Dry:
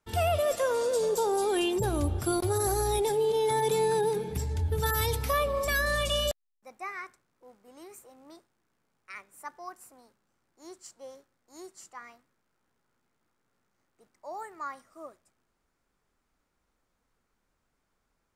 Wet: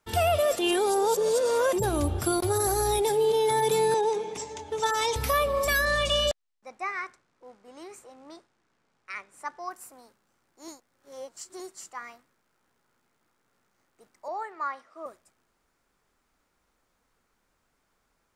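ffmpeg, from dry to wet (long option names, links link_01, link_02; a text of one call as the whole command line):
ffmpeg -i in.wav -filter_complex "[0:a]asettb=1/sr,asplit=3[link_01][link_02][link_03];[link_01]atrim=end=3.944[link_04];[link_02]atrim=start=3.94:end=5.16,asetpts=PTS-STARTPTS,afade=type=in:duration=0.004:curve=qsin,afade=type=out:start_time=1.216:duration=0.004:curve=qsin,highpass=370,equalizer=frequency=1000:width_type=q:width=4:gain=4,equalizer=frequency=1600:width_type=q:width=4:gain=-8,equalizer=frequency=4400:width_type=q:width=4:gain=-6,equalizer=frequency=6400:width_type=q:width=4:gain=6,lowpass=frequency=7500:width=0.5412,lowpass=frequency=7500:width=1.3066[link_05];[link_03]atrim=start=5.156[link_06];[link_04][link_05]acrossfade=duration=0.004:curve1=hsin:curve2=qsin[link_07];[link_07][link_06]acrossfade=duration=0.004:curve1=qsin:curve2=hsin,asettb=1/sr,asplit=3[link_08][link_09][link_10];[link_08]atrim=end=5.854[link_11];[link_09]atrim=start=5.85:end=9.71,asetpts=PTS-STARTPTS,afade=type=in:duration=0.004:curve=qsin,afade=type=out:start_time=3.856:duration=0.004:curve=qsin,lowpass=6900[link_12];[link_10]atrim=start=9.706[link_13];[link_11][link_12]acrossfade=duration=0.004:curve1=hsin:curve2=qsin[link_14];[link_14][link_13]acrossfade=duration=0.004:curve1=qsin:curve2=hsin,asettb=1/sr,asplit=3[link_15][link_16][link_17];[link_15]atrim=end=14.284[link_18];[link_16]atrim=start=14.28:end=15.06,asetpts=PTS-STARTPTS,afade=type=in:duration=0.004:curve=qsin,afade=type=out:start_time=0.776:duration=0.004:curve=qsin,acrossover=split=280 4900:gain=0.2 1 0.112[link_19][link_20][link_21];[link_19][link_20][link_21]amix=inputs=3:normalize=0[link_22];[link_17]atrim=start=15.056[link_23];[link_18][link_22]acrossfade=duration=0.004:curve1=hsin:curve2=qsin[link_24];[link_24][link_23]acrossfade=duration=0.004:curve1=qsin:curve2=hsin,asplit=5[link_25][link_26][link_27][link_28][link_29];[link_25]atrim=end=0.592[link_30];[link_26]atrim=start=0.588:end=1.732,asetpts=PTS-STARTPTS,areverse[link_31];[link_27]atrim=start=1.728:end=10.682[link_32];[link_28]atrim=start=10.678:end=11.602,asetpts=PTS-STARTPTS,areverse[link_33];[link_29]atrim=start=11.598[link_34];[link_30][link_31]acrossfade=duration=0.004:curve1=hsin:curve2=hsin[link_35];[link_35][link_32]acrossfade=duration=0.004:curve1=hsin:curve2=hsin[link_36];[link_36][link_33]acrossfade=duration=0.004:curve1=hsin:curve2=hsin[link_37];[link_37][link_34]acrossfade=duration=0.004:curve1=hsin:curve2=hsin,lowshelf=frequency=290:gain=-5,alimiter=limit=-22dB:level=0:latency=1:release=499,volume=6dB" out.wav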